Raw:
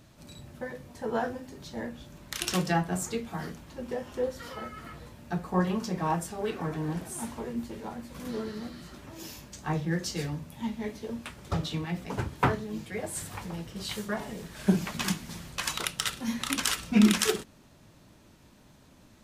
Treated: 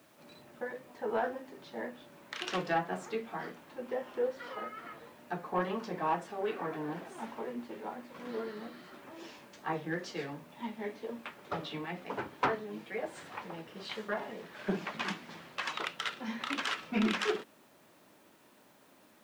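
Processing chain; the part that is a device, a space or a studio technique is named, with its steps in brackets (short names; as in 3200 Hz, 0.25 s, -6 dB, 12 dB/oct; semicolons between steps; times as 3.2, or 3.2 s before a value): tape answering machine (BPF 340–2800 Hz; soft clip -21 dBFS, distortion -17 dB; wow and flutter; white noise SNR 31 dB)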